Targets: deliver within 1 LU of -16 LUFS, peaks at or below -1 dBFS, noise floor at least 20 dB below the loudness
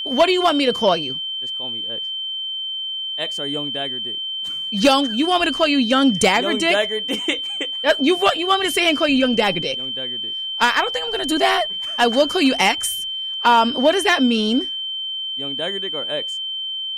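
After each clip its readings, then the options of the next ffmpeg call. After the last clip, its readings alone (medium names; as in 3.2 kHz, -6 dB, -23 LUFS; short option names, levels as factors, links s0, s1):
steady tone 3.1 kHz; tone level -24 dBFS; loudness -19.0 LUFS; peak level -5.0 dBFS; loudness target -16.0 LUFS
-> -af "bandreject=f=3100:w=30"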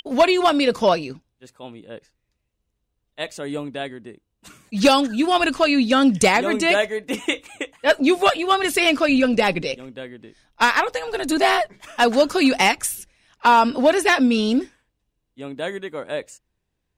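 steady tone not found; loudness -19.0 LUFS; peak level -5.5 dBFS; loudness target -16.0 LUFS
-> -af "volume=1.41"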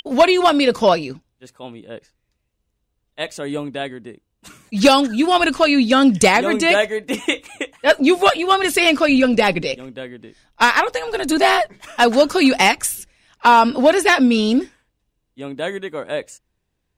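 loudness -16.0 LUFS; peak level -2.5 dBFS; noise floor -74 dBFS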